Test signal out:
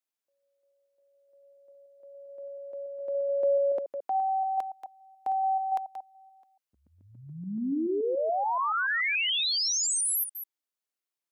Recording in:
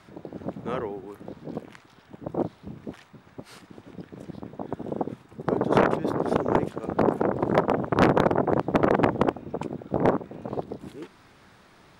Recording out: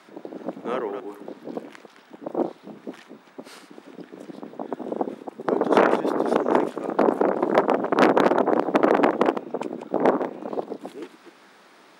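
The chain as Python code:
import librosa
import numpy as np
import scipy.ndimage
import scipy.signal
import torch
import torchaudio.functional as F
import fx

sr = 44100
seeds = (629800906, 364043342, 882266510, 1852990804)

y = fx.reverse_delay(x, sr, ms=143, wet_db=-9.5)
y = scipy.signal.sosfilt(scipy.signal.butter(4, 230.0, 'highpass', fs=sr, output='sos'), y)
y = F.gain(torch.from_numpy(y), 3.0).numpy()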